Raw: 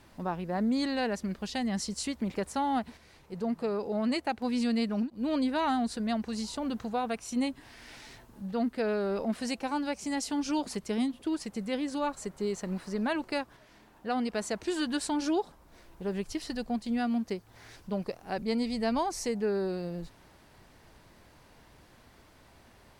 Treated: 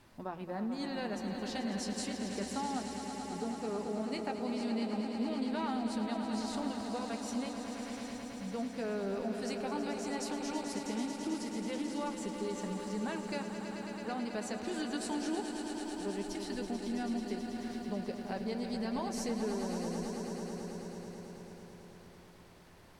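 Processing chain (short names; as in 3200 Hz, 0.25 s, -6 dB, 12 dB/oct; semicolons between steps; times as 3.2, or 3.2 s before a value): compressor 3:1, threshold -32 dBFS, peak gain reduction 6.5 dB; flange 0.37 Hz, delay 8 ms, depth 2.4 ms, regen -56%; swelling echo 0.109 s, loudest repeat 5, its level -10 dB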